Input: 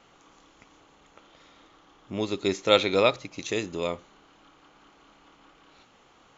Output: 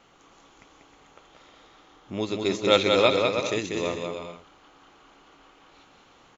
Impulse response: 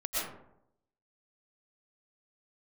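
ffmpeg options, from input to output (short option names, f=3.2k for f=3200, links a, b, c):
-af "aecho=1:1:190|313.5|393.8|446|479.9:0.631|0.398|0.251|0.158|0.1"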